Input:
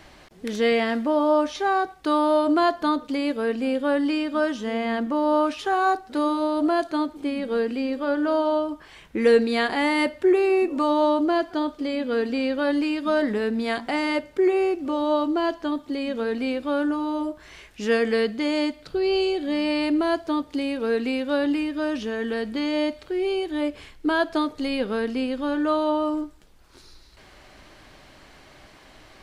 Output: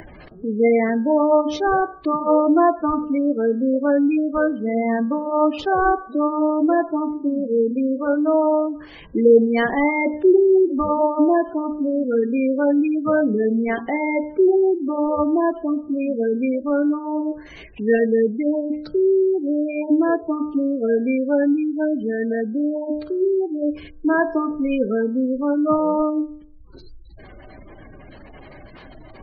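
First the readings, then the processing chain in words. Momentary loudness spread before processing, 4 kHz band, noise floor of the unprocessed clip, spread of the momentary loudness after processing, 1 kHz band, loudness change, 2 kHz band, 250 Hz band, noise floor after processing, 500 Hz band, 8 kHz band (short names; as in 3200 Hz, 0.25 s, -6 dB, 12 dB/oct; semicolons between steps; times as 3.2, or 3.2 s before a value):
7 LU, under -10 dB, -51 dBFS, 7 LU, +2.0 dB, +4.0 dB, +0.5 dB, +5.0 dB, -43 dBFS, +4.5 dB, n/a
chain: tracing distortion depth 0.025 ms; in parallel at -7.5 dB: decimation with a swept rate 31×, swing 60% 1.4 Hz; on the sum: spectral gate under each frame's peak -15 dB strong; upward compressor, threshold -38 dBFS; de-hum 60.15 Hz, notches 27; gain +3.5 dB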